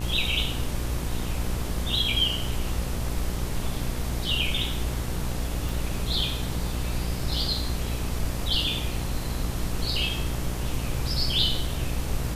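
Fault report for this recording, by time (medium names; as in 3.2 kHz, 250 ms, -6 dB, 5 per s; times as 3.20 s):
buzz 60 Hz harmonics 22 -31 dBFS
5.69 s: pop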